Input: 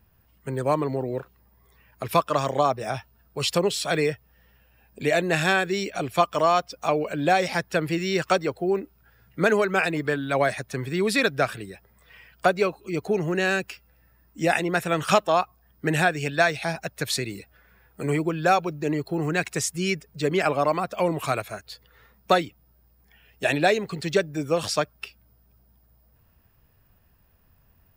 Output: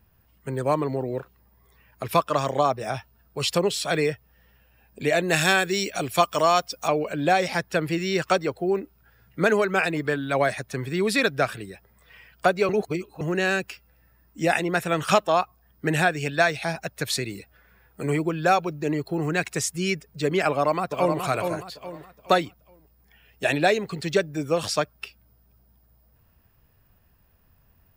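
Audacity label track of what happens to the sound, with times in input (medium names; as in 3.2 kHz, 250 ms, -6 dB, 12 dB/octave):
5.280000	6.880000	treble shelf 4.1 kHz +10 dB
12.690000	13.210000	reverse
20.490000	21.200000	echo throw 420 ms, feedback 35%, level -5.5 dB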